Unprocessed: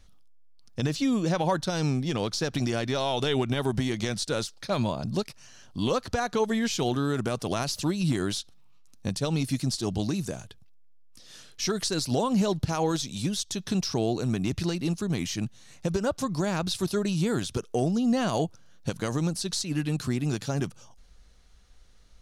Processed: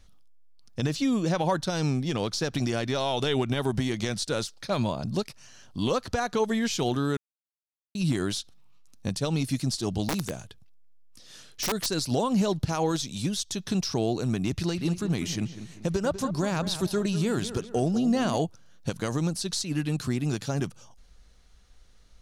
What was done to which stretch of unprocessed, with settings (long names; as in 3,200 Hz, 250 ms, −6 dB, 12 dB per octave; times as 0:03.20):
0:07.17–0:07.95: silence
0:10.08–0:11.86: wrap-around overflow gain 21 dB
0:14.55–0:18.37: feedback echo with a low-pass in the loop 197 ms, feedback 43%, low-pass 3,000 Hz, level −11.5 dB